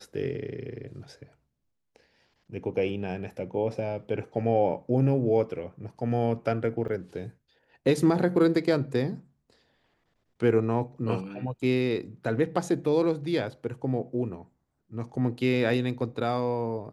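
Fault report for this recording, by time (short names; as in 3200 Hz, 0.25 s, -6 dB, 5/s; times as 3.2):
6.88–6.89 gap 6.1 ms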